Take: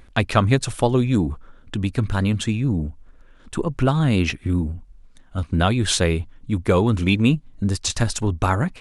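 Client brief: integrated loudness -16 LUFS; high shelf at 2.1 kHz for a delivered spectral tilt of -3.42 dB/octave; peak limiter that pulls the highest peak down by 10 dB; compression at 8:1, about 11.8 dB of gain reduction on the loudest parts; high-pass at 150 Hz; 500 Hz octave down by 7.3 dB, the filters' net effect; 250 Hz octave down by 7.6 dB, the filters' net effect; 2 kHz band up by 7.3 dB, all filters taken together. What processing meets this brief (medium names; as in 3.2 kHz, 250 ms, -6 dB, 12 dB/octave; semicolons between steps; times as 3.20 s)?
high-pass 150 Hz; peaking EQ 250 Hz -7 dB; peaking EQ 500 Hz -8 dB; peaking EQ 2 kHz +4.5 dB; treble shelf 2.1 kHz +9 dB; compression 8:1, threshold -23 dBFS; trim +14 dB; peak limiter -1.5 dBFS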